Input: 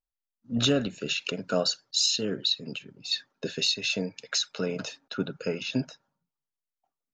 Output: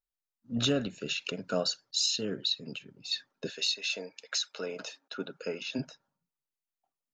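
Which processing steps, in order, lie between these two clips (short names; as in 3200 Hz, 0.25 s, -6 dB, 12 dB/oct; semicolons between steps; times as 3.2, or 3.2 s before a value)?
3.49–5.78 HPF 560 Hz -> 240 Hz 12 dB/oct; gain -4 dB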